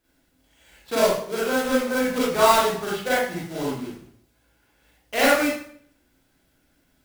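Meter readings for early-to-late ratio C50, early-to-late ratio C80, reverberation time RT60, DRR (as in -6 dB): -1.5 dB, 4.0 dB, 0.60 s, -8.5 dB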